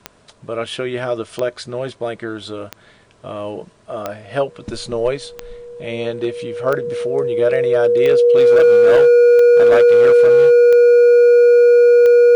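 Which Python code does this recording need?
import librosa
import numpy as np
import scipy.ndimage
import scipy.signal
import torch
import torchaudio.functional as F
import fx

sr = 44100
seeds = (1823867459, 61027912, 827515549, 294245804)

y = fx.fix_declip(x, sr, threshold_db=-7.0)
y = fx.fix_declick_ar(y, sr, threshold=10.0)
y = fx.notch(y, sr, hz=480.0, q=30.0)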